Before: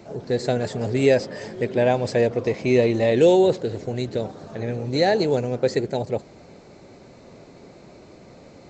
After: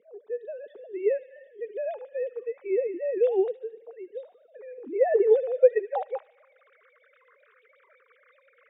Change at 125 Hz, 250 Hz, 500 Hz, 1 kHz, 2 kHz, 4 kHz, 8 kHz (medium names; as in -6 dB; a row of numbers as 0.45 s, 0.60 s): under -40 dB, -15.0 dB, -4.5 dB, -8.5 dB, -13.5 dB, under -30 dB, no reading